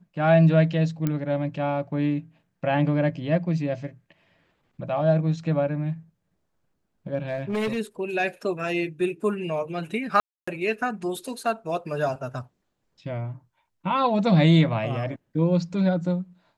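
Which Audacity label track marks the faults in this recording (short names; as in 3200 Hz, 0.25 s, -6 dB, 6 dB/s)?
1.070000	1.070000	pop -13 dBFS
7.280000	7.780000	clipped -22.5 dBFS
10.200000	10.470000	gap 0.275 s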